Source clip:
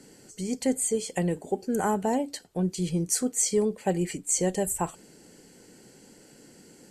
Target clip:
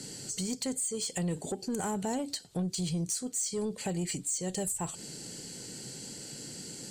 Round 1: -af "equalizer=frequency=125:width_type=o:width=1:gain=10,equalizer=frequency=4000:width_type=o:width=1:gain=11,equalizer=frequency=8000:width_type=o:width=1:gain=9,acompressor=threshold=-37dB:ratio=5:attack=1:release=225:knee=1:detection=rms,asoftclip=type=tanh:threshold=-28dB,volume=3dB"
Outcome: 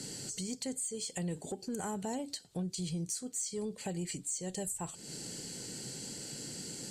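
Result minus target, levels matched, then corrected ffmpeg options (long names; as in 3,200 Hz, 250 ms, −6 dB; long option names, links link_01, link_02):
downward compressor: peak gain reduction +5.5 dB
-af "equalizer=frequency=125:width_type=o:width=1:gain=10,equalizer=frequency=4000:width_type=o:width=1:gain=11,equalizer=frequency=8000:width_type=o:width=1:gain=9,acompressor=threshold=-30dB:ratio=5:attack=1:release=225:knee=1:detection=rms,asoftclip=type=tanh:threshold=-28dB,volume=3dB"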